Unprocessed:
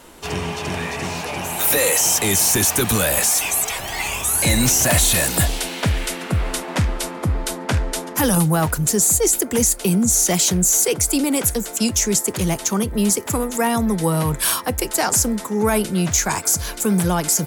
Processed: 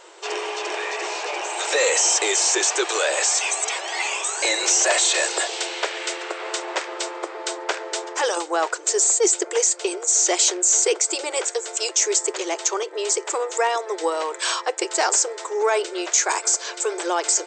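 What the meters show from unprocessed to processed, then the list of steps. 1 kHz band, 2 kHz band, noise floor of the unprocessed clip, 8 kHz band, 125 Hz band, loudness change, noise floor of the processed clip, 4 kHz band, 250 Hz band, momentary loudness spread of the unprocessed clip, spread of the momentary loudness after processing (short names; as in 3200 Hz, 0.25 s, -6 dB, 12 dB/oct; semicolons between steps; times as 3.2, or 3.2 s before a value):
0.0 dB, 0.0 dB, -32 dBFS, -1.5 dB, under -40 dB, -3.0 dB, -38 dBFS, 0.0 dB, -14.5 dB, 10 LU, 11 LU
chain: brick-wall FIR band-pass 330–8400 Hz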